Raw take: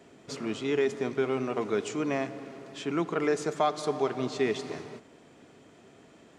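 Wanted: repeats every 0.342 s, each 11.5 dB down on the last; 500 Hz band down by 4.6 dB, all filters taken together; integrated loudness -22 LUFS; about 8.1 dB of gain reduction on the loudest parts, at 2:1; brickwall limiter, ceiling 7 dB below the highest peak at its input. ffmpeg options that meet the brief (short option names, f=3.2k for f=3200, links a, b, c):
-af "equalizer=f=500:t=o:g=-6,acompressor=threshold=-40dB:ratio=2,alimiter=level_in=5.5dB:limit=-24dB:level=0:latency=1,volume=-5.5dB,aecho=1:1:342|684|1026:0.266|0.0718|0.0194,volume=19.5dB"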